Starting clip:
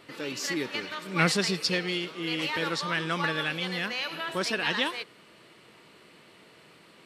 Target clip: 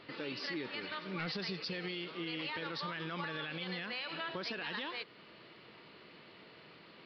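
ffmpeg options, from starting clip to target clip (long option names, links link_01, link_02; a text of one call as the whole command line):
ffmpeg -i in.wav -af "aresample=11025,asoftclip=type=hard:threshold=-16dB,aresample=44100,alimiter=limit=-24dB:level=0:latency=1:release=53,acompressor=threshold=-42dB:ratio=1.5,volume=-1.5dB" out.wav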